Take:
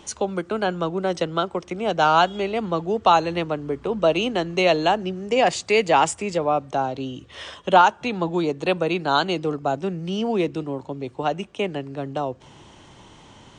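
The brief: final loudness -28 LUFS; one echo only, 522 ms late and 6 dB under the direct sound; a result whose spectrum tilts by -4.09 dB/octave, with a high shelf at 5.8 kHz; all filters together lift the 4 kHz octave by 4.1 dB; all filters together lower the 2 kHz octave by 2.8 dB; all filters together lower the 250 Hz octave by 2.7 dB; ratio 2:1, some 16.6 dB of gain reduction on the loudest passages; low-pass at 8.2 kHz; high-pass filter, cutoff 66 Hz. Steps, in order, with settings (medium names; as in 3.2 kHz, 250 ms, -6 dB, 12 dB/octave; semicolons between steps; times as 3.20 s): high-pass 66 Hz; low-pass 8.2 kHz; peaking EQ 250 Hz -4 dB; peaking EQ 2 kHz -7.5 dB; peaking EQ 4 kHz +7.5 dB; treble shelf 5.8 kHz +3.5 dB; compression 2:1, threshold -42 dBFS; delay 522 ms -6 dB; trim +7.5 dB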